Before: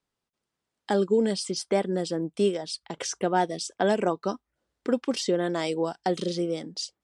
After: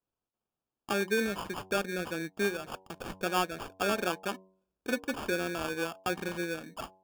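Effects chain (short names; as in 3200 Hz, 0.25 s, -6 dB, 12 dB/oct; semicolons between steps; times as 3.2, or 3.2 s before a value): sample-rate reducer 2000 Hz, jitter 0%; dynamic EQ 1800 Hz, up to +6 dB, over -42 dBFS, Q 0.97; de-hum 94.44 Hz, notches 11; gain -7.5 dB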